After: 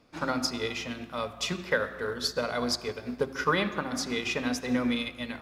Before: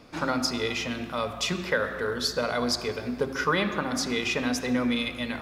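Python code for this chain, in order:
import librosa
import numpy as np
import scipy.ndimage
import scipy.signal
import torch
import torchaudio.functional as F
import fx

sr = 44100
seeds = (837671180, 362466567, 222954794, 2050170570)

y = fx.upward_expand(x, sr, threshold_db=-43.0, expansion=1.5)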